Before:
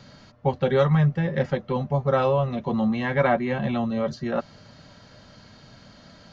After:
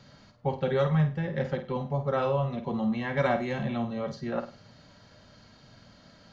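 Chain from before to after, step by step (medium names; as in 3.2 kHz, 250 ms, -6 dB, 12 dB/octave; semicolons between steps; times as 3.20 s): 3.17–3.63 s: tone controls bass +2 dB, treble +14 dB; flutter echo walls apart 8.7 m, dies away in 0.33 s; trim -6 dB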